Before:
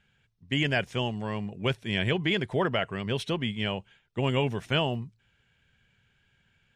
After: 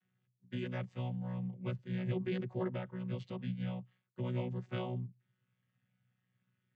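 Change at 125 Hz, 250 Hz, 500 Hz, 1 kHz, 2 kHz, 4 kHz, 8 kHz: -6.5 dB, -8.0 dB, -11.5 dB, -15.0 dB, -19.5 dB, -23.0 dB, under -25 dB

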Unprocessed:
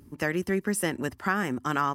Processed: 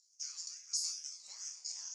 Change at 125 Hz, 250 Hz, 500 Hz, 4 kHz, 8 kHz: under -40 dB, under -40 dB, under -40 dB, +1.0 dB, +0.5 dB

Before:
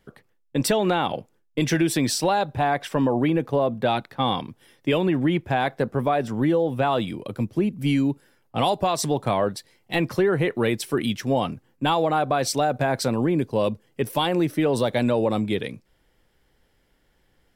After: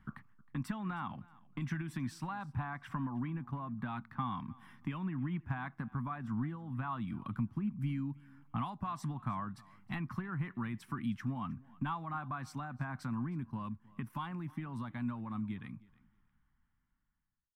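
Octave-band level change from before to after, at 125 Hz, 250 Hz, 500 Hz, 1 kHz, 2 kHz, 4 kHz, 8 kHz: -10.5 dB, -14.5 dB, -32.0 dB, -16.5 dB, -16.0 dB, -26.5 dB, under -25 dB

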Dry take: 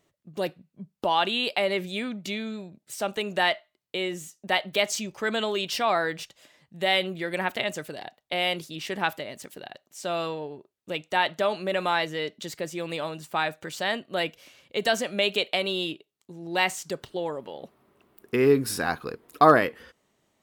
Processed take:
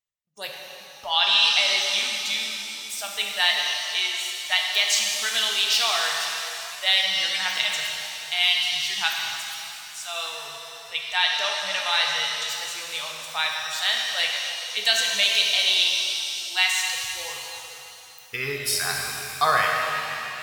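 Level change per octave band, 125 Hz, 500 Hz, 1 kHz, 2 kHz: no reading, -9.5 dB, -1.5 dB, +5.0 dB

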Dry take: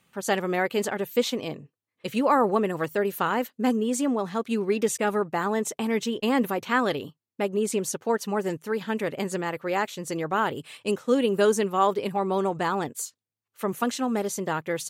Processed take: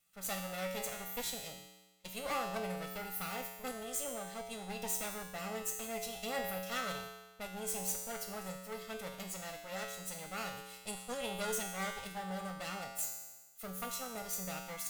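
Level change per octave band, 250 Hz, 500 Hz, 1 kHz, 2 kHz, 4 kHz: -19.0 dB, -17.5 dB, -15.0 dB, -12.0 dB, -8.0 dB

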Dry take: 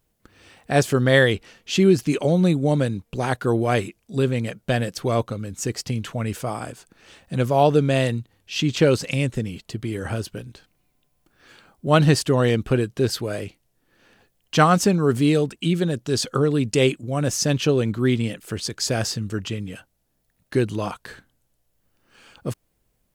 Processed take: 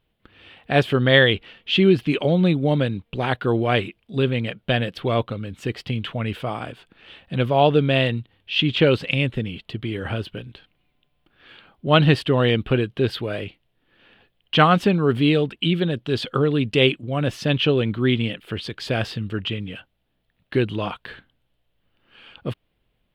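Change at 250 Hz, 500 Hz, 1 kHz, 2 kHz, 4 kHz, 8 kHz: 0.0 dB, 0.0 dB, +0.5 dB, +3.0 dB, +4.5 dB, under -15 dB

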